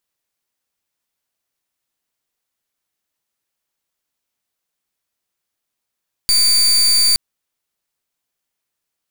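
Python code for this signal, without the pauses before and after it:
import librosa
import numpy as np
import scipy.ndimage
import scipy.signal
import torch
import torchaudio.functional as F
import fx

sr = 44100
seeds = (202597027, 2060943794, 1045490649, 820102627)

y = fx.pulse(sr, length_s=0.87, hz=4630.0, level_db=-13.0, duty_pct=32)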